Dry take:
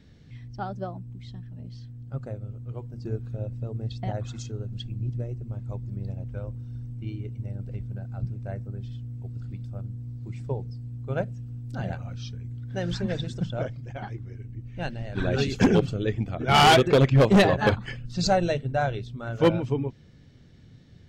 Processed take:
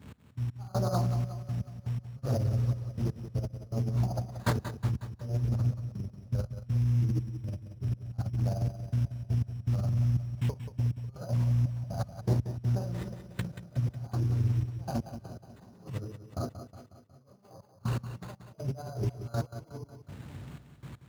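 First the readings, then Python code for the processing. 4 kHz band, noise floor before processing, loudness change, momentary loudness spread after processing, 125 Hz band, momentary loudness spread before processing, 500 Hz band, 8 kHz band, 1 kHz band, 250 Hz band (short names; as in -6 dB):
under -15 dB, -51 dBFS, -5.5 dB, 16 LU, 0.0 dB, 18 LU, -14.0 dB, n/a, -15.5 dB, -9.0 dB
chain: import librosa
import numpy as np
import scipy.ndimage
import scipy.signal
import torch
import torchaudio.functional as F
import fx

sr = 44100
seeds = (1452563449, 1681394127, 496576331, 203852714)

y = fx.dmg_crackle(x, sr, seeds[0], per_s=330.0, level_db=-54.0)
y = scipy.signal.sosfilt(scipy.signal.ellip(3, 1.0, 40, [1200.0, 5700.0], 'bandstop', fs=sr, output='sos'), y)
y = fx.doubler(y, sr, ms=32.0, db=-10)
y = fx.rev_gated(y, sr, seeds[1], gate_ms=90, shape='rising', drr_db=-4.5)
y = fx.over_compress(y, sr, threshold_db=-28.0, ratio=-0.5)
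y = fx.tilt_shelf(y, sr, db=-8.5, hz=920.0)
y = np.repeat(y[::8], 8)[:len(y)]
y = fx.peak_eq(y, sr, hz=86.0, db=9.0, octaves=2.5)
y = fx.step_gate(y, sr, bpm=121, pattern='x..x..xxxx..', floor_db=-24.0, edge_ms=4.5)
y = scipy.signal.sosfilt(scipy.signal.butter(4, 62.0, 'highpass', fs=sr, output='sos'), y)
y = fx.echo_feedback(y, sr, ms=182, feedback_pct=54, wet_db=-10.5)
y = fx.doppler_dist(y, sr, depth_ms=0.29)
y = y * librosa.db_to_amplitude(-1.5)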